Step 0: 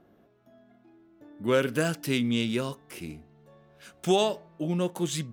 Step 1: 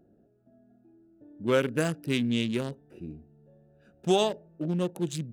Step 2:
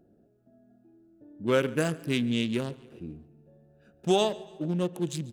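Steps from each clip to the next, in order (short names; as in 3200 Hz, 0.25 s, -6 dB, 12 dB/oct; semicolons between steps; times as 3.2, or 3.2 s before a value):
Wiener smoothing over 41 samples
feedback echo 0.141 s, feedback 51%, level -22 dB; on a send at -20 dB: reverb RT60 1.4 s, pre-delay 5 ms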